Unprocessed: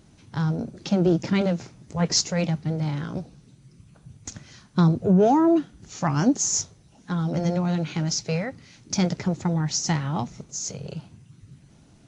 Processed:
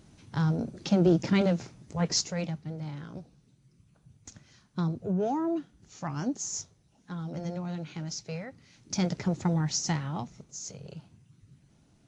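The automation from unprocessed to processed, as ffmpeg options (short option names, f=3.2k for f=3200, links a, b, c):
-af "volume=6.5dB,afade=t=out:st=1.56:d=1.09:silence=0.354813,afade=t=in:st=8.48:d=1:silence=0.375837,afade=t=out:st=9.48:d=0.83:silence=0.473151"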